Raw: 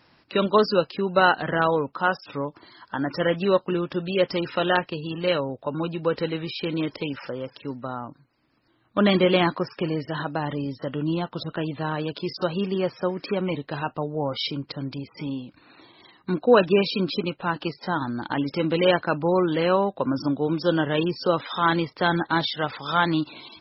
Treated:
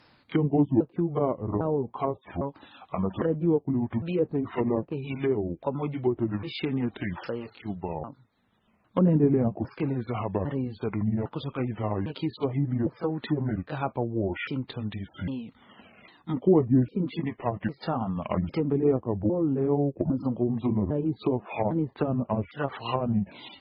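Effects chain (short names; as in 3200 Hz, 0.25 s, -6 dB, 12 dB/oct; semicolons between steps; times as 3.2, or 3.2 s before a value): repeated pitch sweeps -8.5 st, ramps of 0.804 s; treble ducked by the level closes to 450 Hz, closed at -21 dBFS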